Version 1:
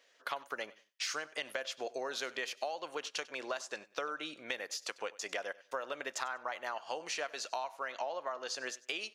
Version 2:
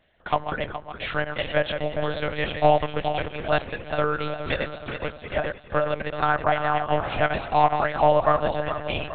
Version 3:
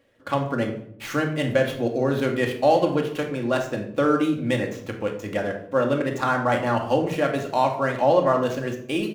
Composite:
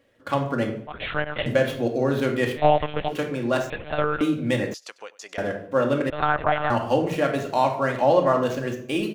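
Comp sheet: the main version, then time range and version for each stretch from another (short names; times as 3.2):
3
0.87–1.46 from 2
2.58–3.1 from 2, crossfade 0.06 s
3.7–4.21 from 2
4.74–5.38 from 1
6.1–6.7 from 2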